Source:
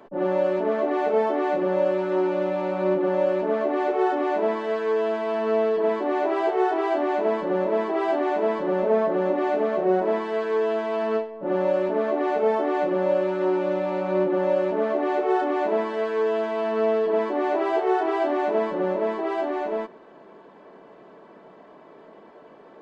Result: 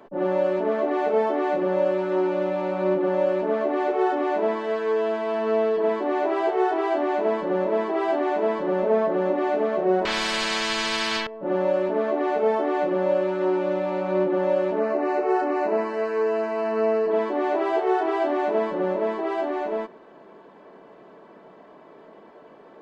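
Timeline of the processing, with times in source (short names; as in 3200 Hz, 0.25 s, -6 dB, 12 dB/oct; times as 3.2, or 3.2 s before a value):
10.05–11.27 spectral compressor 10:1
14.79–17.11 Butterworth band-stop 3400 Hz, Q 3.3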